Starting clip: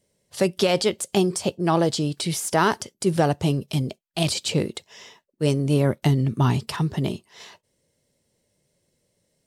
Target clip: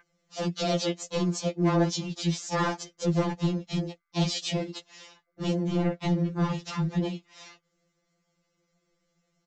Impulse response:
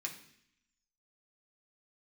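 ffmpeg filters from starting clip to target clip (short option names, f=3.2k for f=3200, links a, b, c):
-filter_complex "[0:a]aeval=exprs='val(0)+0.00891*sin(2*PI*1600*n/s)':c=same,asplit=4[a][b][c][d];[b]asetrate=35002,aresample=44100,atempo=1.25992,volume=-9dB[e];[c]asetrate=55563,aresample=44100,atempo=0.793701,volume=-6dB[f];[d]asetrate=58866,aresample=44100,atempo=0.749154,volume=-11dB[g];[a][e][f][g]amix=inputs=4:normalize=0,aresample=16000,asoftclip=type=tanh:threshold=-15dB,aresample=44100,afftfilt=real='re*2.83*eq(mod(b,8),0)':imag='im*2.83*eq(mod(b,8),0)':win_size=2048:overlap=0.75,volume=-3dB"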